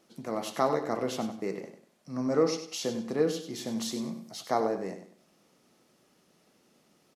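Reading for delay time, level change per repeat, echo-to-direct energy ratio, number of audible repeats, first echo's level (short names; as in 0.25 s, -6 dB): 97 ms, -10.5 dB, -9.5 dB, 3, -10.0 dB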